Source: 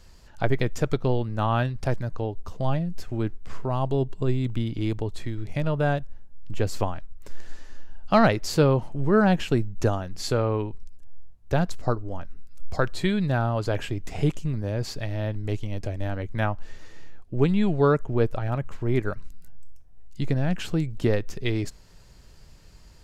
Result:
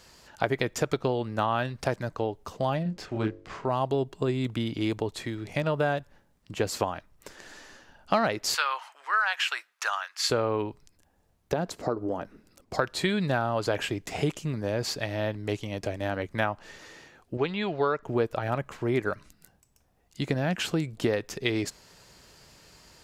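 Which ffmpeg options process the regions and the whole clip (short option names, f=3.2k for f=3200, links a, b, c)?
-filter_complex "[0:a]asettb=1/sr,asplit=3[a][b][c];[a]atrim=end=2.834[d];[b]atrim=start=2.83:end=3.67,asetpts=PTS-STARTPTS,afade=t=in:d=0.004:c=qsin,afade=t=out:st=0.836:d=0.004:c=qsin,bandreject=f=49.15:t=h:w=4,bandreject=f=98.3:t=h:w=4,bandreject=f=147.45:t=h:w=4,bandreject=f=196.6:t=h:w=4,bandreject=f=245.75:t=h:w=4,bandreject=f=294.9:t=h:w=4,bandreject=f=344.05:t=h:w=4,bandreject=f=393.2:t=h:w=4,bandreject=f=442.35:t=h:w=4,bandreject=f=491.5:t=h:w=4,bandreject=f=540.65:t=h:w=4,bandreject=f=589.8:t=h:w=4,bandreject=f=638.95:t=h:w=4,adynamicsmooth=sensitivity=6:basefreq=5.7k,asplit=2[e][f];[f]adelay=28,volume=-5dB[g];[e][g]amix=inputs=2:normalize=0,atrim=end_sample=37044[h];[c]atrim=start=3.666[i];[d][h]acrossfade=d=0.004:c1=hsin:c2=qsin[j];[j][i]acrossfade=d=0.004:c1=qsin:c2=hsin,asettb=1/sr,asplit=3[k][l][m];[k]atrim=end=8.544[n];[l]atrim=start=8.54:end=10.3,asetpts=PTS-STARTPTS,afade=t=in:d=0.004:c=qsin,afade=t=out:st=1.756:d=0.004:c=qsin,highpass=f=1.2k:w=0.5412,highpass=f=1.2k:w=1.3066,highshelf=f=3.8k:g=-9.5,acontrast=83[o];[m]atrim=start=10.296[p];[n][o]acrossfade=d=0.004:c1=hsin:c2=qsin[q];[q][p]acrossfade=d=0.004:c1=qsin:c2=hsin,asettb=1/sr,asplit=3[r][s][t];[r]atrim=end=11.534[u];[s]atrim=start=11.53:end=12.74,asetpts=PTS-STARTPTS,afade=t=in:d=0.004:c=qsin,afade=t=out:st=1.206:d=0.004:c=qsin,equalizer=f=350:t=o:w=2.4:g=10.5,acompressor=threshold=-26dB:ratio=3:attack=3.2:release=140:knee=1:detection=peak[v];[t]atrim=start=12.736[w];[u][v]acrossfade=d=0.004:c1=hsin:c2=qsin[x];[x][w]acrossfade=d=0.004:c1=qsin:c2=hsin,asettb=1/sr,asplit=3[y][z][aa];[y]atrim=end=17.374[ab];[z]atrim=start=17.37:end=18.03,asetpts=PTS-STARTPTS,afade=t=in:d=0.004:c=qsin,afade=t=out:st=0.656:d=0.004:c=qsin,lowpass=f=5.2k:w=0.5412,lowpass=f=5.2k:w=1.3066,equalizer=f=190:t=o:w=2.1:g=-9.5[ac];[aa]atrim=start=18.026[ad];[ab][ac]acrossfade=d=0.004:c1=hsin:c2=qsin[ae];[ae][ad]acrossfade=d=0.004:c1=qsin:c2=hsin,highpass=f=370:p=1,acompressor=threshold=-27dB:ratio=4,volume=5dB"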